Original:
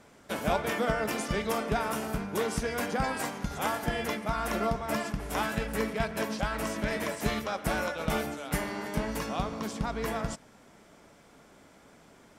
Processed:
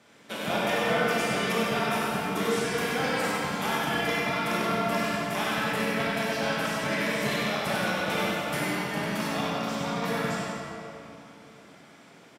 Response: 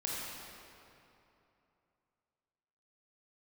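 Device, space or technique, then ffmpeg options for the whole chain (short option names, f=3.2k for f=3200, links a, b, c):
PA in a hall: -filter_complex "[0:a]highpass=f=100:w=0.5412,highpass=f=100:w=1.3066,equalizer=f=3.1k:t=o:w=1.6:g=7,aecho=1:1:97:0.562[a];[1:a]atrim=start_sample=2205[b];[a][b]afir=irnorm=-1:irlink=0,volume=-2.5dB"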